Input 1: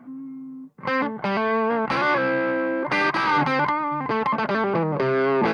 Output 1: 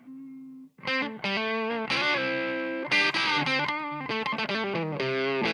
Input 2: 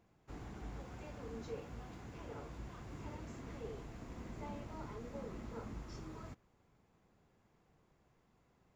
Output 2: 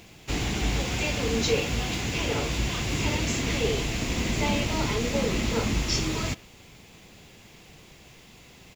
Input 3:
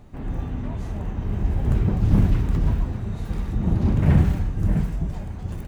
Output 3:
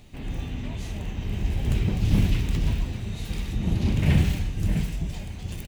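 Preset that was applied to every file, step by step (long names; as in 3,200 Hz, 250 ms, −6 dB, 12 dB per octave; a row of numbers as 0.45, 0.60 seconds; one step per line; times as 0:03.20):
high shelf with overshoot 1,900 Hz +11 dB, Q 1.5
far-end echo of a speakerphone 110 ms, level −22 dB
loudness normalisation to −27 LKFS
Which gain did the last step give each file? −7.0, +20.0, −3.5 decibels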